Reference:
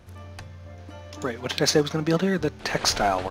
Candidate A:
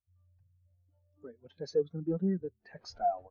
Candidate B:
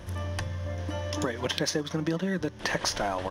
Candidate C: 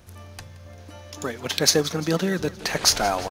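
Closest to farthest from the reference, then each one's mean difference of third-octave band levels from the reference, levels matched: C, B, A; 3.0 dB, 6.0 dB, 18.5 dB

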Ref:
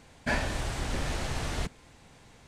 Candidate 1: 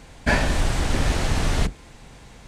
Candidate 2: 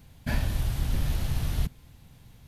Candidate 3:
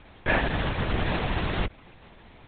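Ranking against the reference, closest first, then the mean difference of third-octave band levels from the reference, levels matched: 1, 2, 3; 1.0 dB, 6.0 dB, 8.5 dB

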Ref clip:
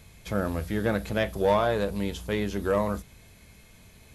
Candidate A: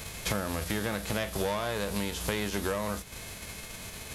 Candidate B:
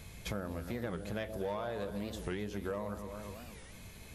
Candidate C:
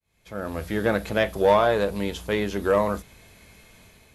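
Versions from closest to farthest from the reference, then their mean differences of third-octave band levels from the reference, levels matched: C, B, A; 3.0 dB, 7.5 dB, 11.0 dB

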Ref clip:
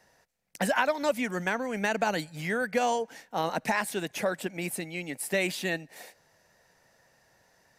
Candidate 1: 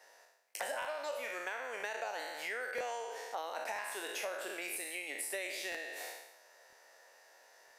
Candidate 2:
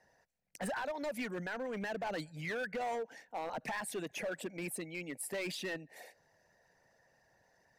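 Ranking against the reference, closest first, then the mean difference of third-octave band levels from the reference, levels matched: 2, 1; 3.5 dB, 10.0 dB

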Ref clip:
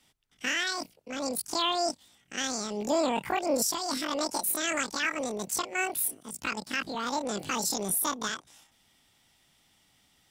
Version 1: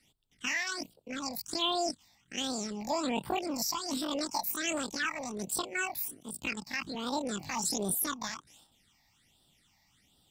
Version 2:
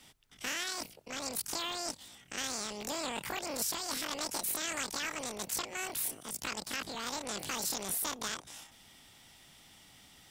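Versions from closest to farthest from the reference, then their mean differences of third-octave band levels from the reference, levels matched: 1, 2; 4.0 dB, 7.5 dB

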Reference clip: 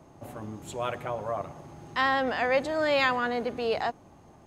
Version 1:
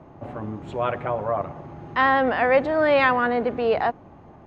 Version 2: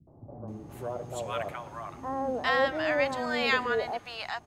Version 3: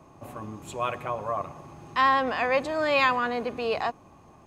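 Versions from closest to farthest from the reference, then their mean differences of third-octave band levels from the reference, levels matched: 3, 1, 2; 1.5 dB, 3.5 dB, 7.0 dB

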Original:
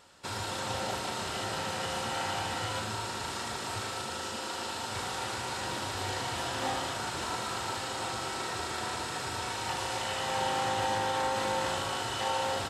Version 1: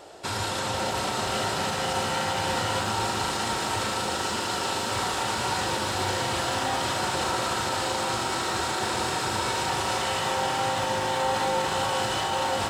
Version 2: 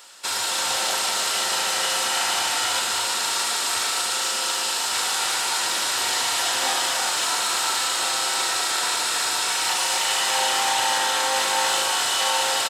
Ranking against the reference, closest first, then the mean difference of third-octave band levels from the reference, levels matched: 1, 2; 2.5 dB, 8.5 dB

